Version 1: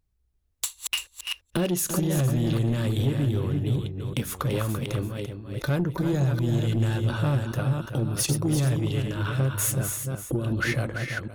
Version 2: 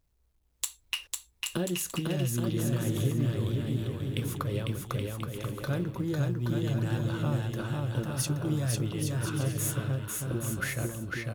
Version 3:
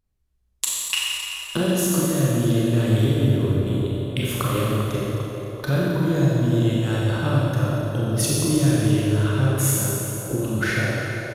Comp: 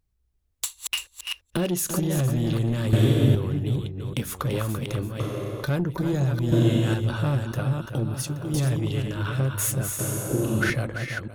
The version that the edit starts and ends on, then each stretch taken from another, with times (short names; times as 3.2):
1
2.93–3.35 from 3
5.2–5.65 from 3
6.52–6.94 from 3
8.14–8.54 from 2
9.99–10.7 from 3